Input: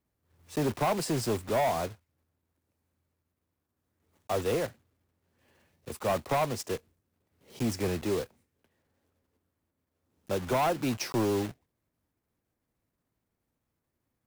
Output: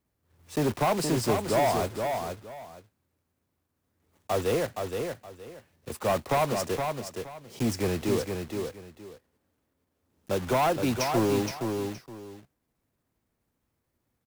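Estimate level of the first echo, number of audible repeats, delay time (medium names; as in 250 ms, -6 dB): -5.5 dB, 2, 469 ms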